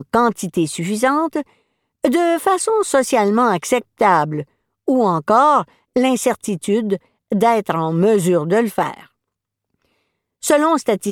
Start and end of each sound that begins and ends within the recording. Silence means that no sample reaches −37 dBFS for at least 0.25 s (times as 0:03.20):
0:02.04–0:04.43
0:04.88–0:05.64
0:05.96–0:06.97
0:07.32–0:09.04